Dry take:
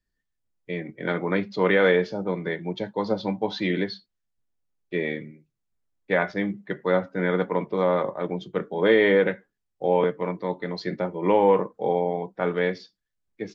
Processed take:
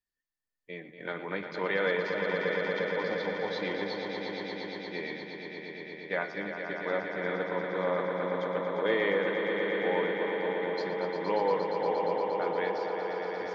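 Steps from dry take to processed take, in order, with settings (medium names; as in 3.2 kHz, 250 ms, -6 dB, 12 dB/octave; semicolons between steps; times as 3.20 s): bass shelf 290 Hz -11 dB; echo with a slow build-up 117 ms, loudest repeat 5, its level -7.5 dB; trim -7.5 dB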